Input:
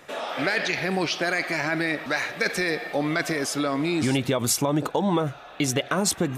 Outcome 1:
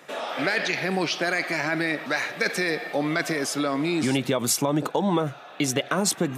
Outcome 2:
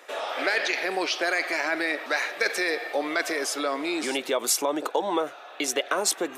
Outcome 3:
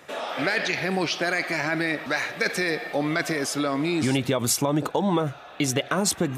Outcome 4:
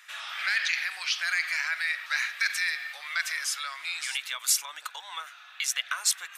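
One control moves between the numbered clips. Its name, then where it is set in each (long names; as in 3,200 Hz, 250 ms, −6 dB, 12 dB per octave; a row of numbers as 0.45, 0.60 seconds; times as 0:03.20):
high-pass filter, corner frequency: 130, 350, 48, 1,400 Hertz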